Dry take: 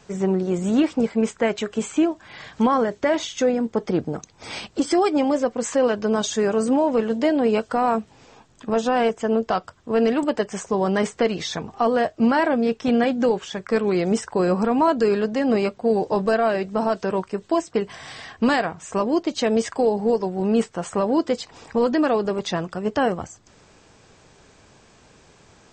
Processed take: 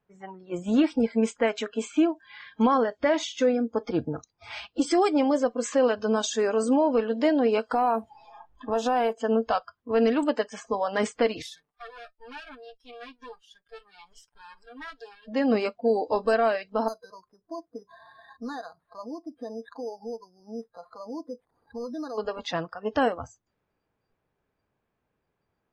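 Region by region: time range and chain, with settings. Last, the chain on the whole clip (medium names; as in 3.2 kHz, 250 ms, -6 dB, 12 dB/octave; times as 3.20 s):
7.71–9.13 s: companding laws mixed up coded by mu + peaking EQ 820 Hz +6.5 dB 0.81 oct + compression 3:1, threshold -18 dBFS
11.42–15.28 s: comb filter that takes the minimum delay 6.8 ms + pre-emphasis filter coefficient 0.9
16.88–22.18 s: low-pass 1.7 kHz 24 dB/octave + compression 2:1, threshold -38 dBFS + careless resampling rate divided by 8×, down none, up hold
whole clip: spectral noise reduction 23 dB; level-controlled noise filter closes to 2.2 kHz, open at -17.5 dBFS; trim -2.5 dB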